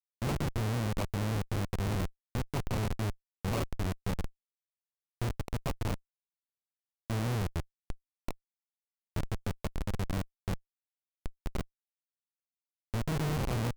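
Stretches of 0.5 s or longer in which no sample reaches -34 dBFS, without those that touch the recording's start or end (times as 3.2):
4.26–5.22
5.94–7.1
8.31–9.16
10.55–11.26
11.61–12.94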